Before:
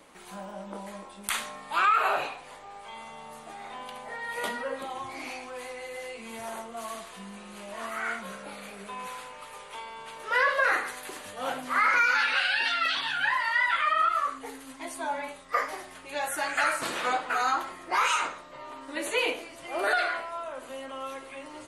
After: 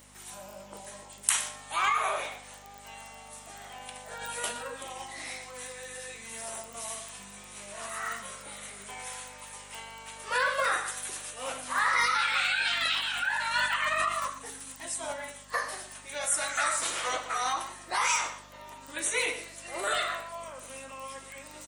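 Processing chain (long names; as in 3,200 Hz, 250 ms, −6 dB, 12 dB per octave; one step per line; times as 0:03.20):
surface crackle 12 per second −41 dBFS
mains hum 50 Hz, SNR 11 dB
RIAA equalisation recording
formants moved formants −2 semitones
on a send: single-tap delay 119 ms −14.5 dB
on the sum: level −4.5 dB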